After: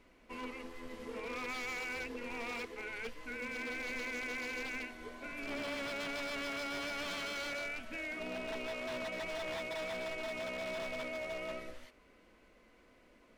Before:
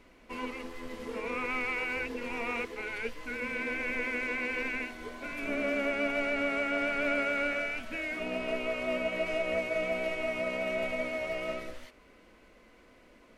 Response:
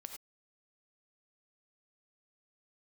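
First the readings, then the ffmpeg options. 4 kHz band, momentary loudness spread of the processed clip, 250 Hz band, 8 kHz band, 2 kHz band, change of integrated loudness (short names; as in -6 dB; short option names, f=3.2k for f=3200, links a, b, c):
-0.5 dB, 7 LU, -8.5 dB, +2.0 dB, -7.5 dB, -7.5 dB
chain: -af "aeval=exprs='0.0355*(abs(mod(val(0)/0.0355+3,4)-2)-1)':c=same,volume=-5.5dB"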